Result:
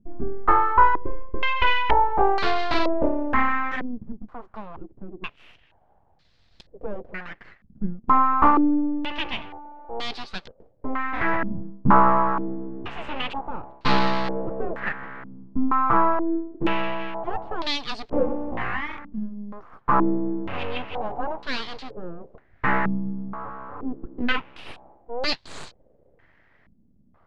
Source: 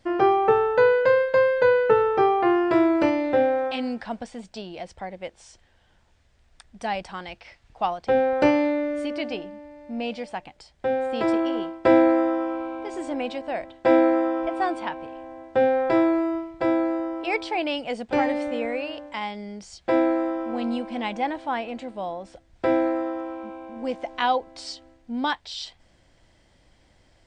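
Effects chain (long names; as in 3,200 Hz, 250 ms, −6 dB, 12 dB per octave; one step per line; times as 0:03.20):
full-wave rectification
low-pass on a step sequencer 2.1 Hz 220–4,300 Hz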